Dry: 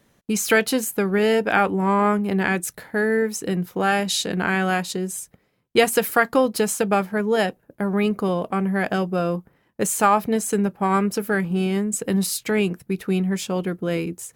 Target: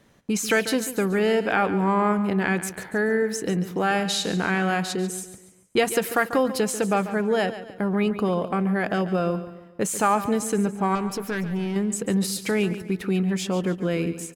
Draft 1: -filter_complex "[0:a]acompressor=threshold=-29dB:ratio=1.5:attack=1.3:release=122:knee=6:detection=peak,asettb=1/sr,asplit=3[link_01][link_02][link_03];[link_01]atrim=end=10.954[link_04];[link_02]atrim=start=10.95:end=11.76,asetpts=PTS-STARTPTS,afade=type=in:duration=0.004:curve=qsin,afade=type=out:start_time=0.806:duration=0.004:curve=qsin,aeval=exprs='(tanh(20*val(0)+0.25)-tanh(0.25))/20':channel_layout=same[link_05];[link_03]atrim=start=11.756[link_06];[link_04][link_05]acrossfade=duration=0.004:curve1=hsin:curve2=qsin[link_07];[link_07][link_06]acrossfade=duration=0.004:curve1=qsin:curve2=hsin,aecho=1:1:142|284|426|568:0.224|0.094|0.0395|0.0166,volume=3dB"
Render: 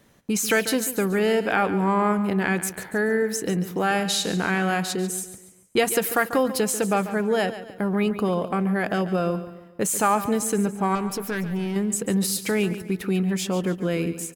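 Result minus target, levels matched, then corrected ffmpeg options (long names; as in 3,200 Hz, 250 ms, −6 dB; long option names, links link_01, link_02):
8,000 Hz band +3.0 dB
-filter_complex "[0:a]acompressor=threshold=-29dB:ratio=1.5:attack=1.3:release=122:knee=6:detection=peak,highshelf=frequency=11000:gain=-11,asettb=1/sr,asplit=3[link_01][link_02][link_03];[link_01]atrim=end=10.954[link_04];[link_02]atrim=start=10.95:end=11.76,asetpts=PTS-STARTPTS,afade=type=in:duration=0.004:curve=qsin,afade=type=out:start_time=0.806:duration=0.004:curve=qsin,aeval=exprs='(tanh(20*val(0)+0.25)-tanh(0.25))/20':channel_layout=same[link_05];[link_03]atrim=start=11.756[link_06];[link_04][link_05]acrossfade=duration=0.004:curve1=hsin:curve2=qsin[link_07];[link_07][link_06]acrossfade=duration=0.004:curve1=qsin:curve2=hsin,aecho=1:1:142|284|426|568:0.224|0.094|0.0395|0.0166,volume=3dB"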